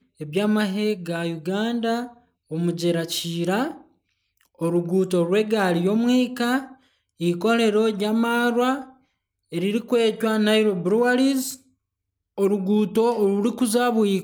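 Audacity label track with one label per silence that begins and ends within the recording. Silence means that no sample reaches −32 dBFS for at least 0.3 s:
2.070000	2.510000	silence
3.730000	4.610000	silence
6.640000	7.210000	silence
8.830000	9.530000	silence
11.540000	12.380000	silence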